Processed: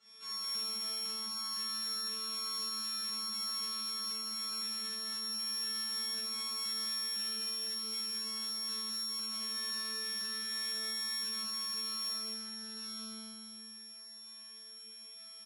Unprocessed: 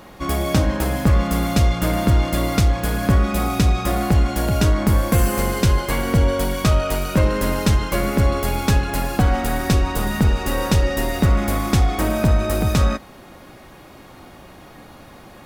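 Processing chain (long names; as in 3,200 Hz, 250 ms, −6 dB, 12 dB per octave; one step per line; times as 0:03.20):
samples sorted by size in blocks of 32 samples
low-pass filter 8,200 Hz 24 dB per octave
tuned comb filter 220 Hz, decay 1.5 s, mix 100%
convolution reverb RT60 0.95 s, pre-delay 3 ms, DRR 1 dB
brickwall limiter −31 dBFS, peak gain reduction 10 dB
high-pass filter 160 Hz 24 dB per octave
high-shelf EQ 2,100 Hz +11 dB
downward compressor 2 to 1, threshold −42 dBFS, peak gain reduction 6 dB
comb filter 5.1 ms, depth 49%
tube saturation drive 32 dB, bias 0.55
low-shelf EQ 450 Hz −11.5 dB
loudspeakers that aren't time-aligned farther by 15 metres −9 dB, 72 metres −6 dB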